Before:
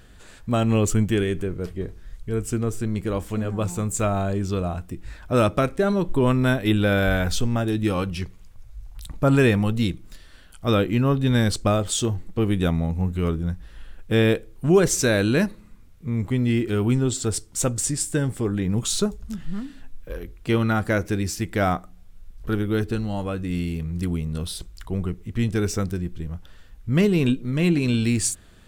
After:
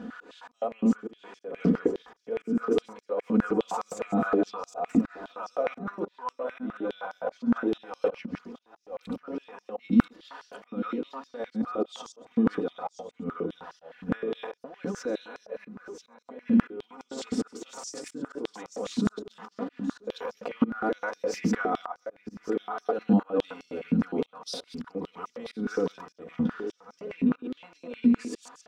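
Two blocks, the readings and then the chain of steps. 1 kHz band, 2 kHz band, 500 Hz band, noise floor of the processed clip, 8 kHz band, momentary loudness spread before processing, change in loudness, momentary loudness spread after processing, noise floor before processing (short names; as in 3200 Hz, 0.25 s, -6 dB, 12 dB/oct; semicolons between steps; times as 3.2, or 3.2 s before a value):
-4.5 dB, -10.5 dB, -6.5 dB, -69 dBFS, -18.5 dB, 14 LU, -7.0 dB, 17 LU, -47 dBFS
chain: reverse delay 0.101 s, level -4.5 dB; echo 0.128 s -19 dB; negative-ratio compressor -30 dBFS, ratio -1; air absorption 250 m; comb 4.1 ms, depth 99%; echo 0.987 s -9.5 dB; auto swell 0.266 s; band shelf 2700 Hz -8.5 dB; stepped high-pass 9.7 Hz 230–5400 Hz; gain +1 dB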